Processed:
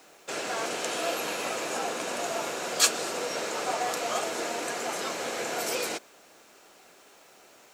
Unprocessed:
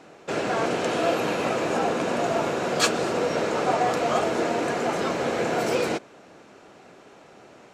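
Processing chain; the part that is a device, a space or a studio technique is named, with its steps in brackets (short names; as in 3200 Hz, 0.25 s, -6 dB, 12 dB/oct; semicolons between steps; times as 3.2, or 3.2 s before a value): turntable without a phono preamp (RIAA curve recording; white noise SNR 33 dB); gain -6 dB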